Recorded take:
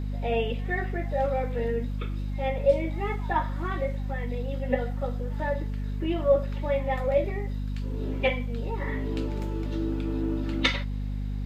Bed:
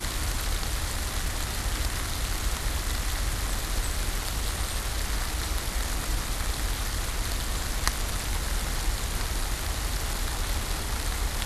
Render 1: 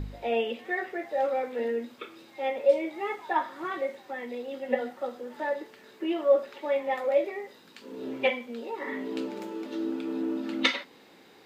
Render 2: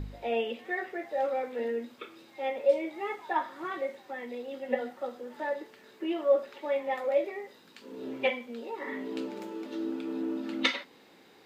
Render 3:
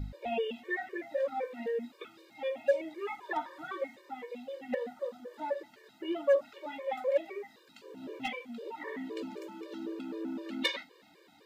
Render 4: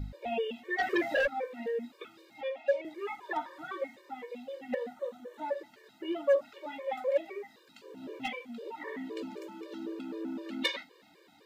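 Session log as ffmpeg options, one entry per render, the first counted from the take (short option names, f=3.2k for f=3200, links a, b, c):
-af "bandreject=f=50:t=h:w=4,bandreject=f=100:t=h:w=4,bandreject=f=150:t=h:w=4,bandreject=f=200:t=h:w=4,bandreject=f=250:t=h:w=4"
-af "volume=-2.5dB"
-af "asoftclip=type=hard:threshold=-19dB,afftfilt=real='re*gt(sin(2*PI*3.9*pts/sr)*(1-2*mod(floor(b*sr/1024/310),2)),0)':imag='im*gt(sin(2*PI*3.9*pts/sr)*(1-2*mod(floor(b*sr/1024/310),2)),0)':win_size=1024:overlap=0.75"
-filter_complex "[0:a]asplit=3[a][b][c];[a]afade=t=out:st=0.78:d=0.02[d];[b]aeval=exprs='0.0708*sin(PI/2*2.82*val(0)/0.0708)':c=same,afade=t=in:st=0.78:d=0.02,afade=t=out:st=1.26:d=0.02[e];[c]afade=t=in:st=1.26:d=0.02[f];[d][e][f]amix=inputs=3:normalize=0,asettb=1/sr,asplit=3[g][h][i];[g]atrim=end=2.414[j];[h]atrim=start=2.41:end=2.85,asetpts=PTS-STARTPTS,afade=t=in:d=0.004:c=qsin,afade=t=out:st=0.436:d=0.004:c=qsin,acrossover=split=350 5700:gain=0.0631 1 0.224[k][l][m];[k][l][m]amix=inputs=3:normalize=0[n];[i]atrim=start=2.846[o];[j][n]acrossfade=d=0.004:c1=hsin:c2=qsin[p];[p][o]acrossfade=d=0.004:c1=qsin:c2=hsin,asettb=1/sr,asplit=3[q][r][s];[q]atrim=end=4.954[t];[r]atrim=start=4.95:end=5.47,asetpts=PTS-STARTPTS,afade=t=in:d=0.004:c=qsin,afade=t=out:st=0.516:d=0.004:c=qsin,bandreject=f=4.9k:w=6.4[u];[s]atrim=start=5.466[v];[t][u]acrossfade=d=0.004:c1=hsin:c2=qsin[w];[w][v]acrossfade=d=0.004:c1=qsin:c2=hsin"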